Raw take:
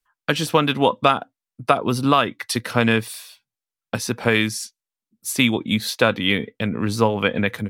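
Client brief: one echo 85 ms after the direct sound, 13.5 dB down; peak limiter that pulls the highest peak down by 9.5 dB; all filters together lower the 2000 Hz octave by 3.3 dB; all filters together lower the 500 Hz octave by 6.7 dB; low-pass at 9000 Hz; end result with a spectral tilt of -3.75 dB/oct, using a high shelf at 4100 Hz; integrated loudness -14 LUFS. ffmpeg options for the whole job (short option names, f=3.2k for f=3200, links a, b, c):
-af "lowpass=9k,equalizer=f=500:t=o:g=-8,equalizer=f=2k:t=o:g=-5.5,highshelf=f=4.1k:g=6,alimiter=limit=-13.5dB:level=0:latency=1,aecho=1:1:85:0.211,volume=12dB"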